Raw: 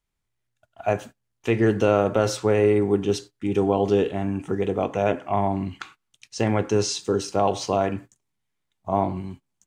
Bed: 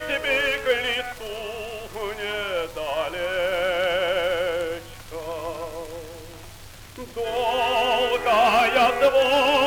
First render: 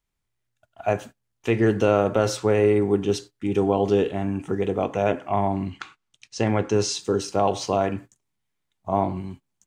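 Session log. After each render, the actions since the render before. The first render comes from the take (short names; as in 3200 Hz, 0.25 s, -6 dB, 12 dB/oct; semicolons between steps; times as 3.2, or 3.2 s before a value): 5.7–6.8 LPF 8200 Hz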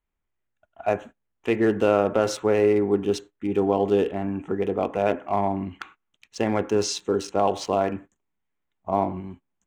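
Wiener smoothing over 9 samples; bell 120 Hz -11 dB 0.62 oct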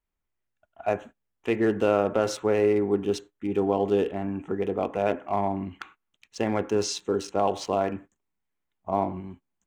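gain -2.5 dB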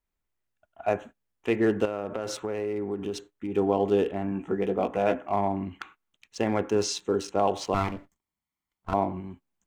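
1.85–3.55 compressor 4:1, threshold -28 dBFS; 4.3–5.22 doubler 16 ms -7 dB; 7.74–8.94 minimum comb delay 0.93 ms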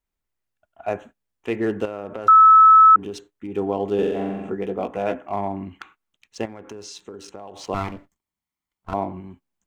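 2.28–2.96 bleep 1300 Hz -7 dBFS; 3.94–4.5 flutter echo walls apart 7.7 m, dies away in 1.1 s; 6.45–7.64 compressor 8:1, threshold -34 dBFS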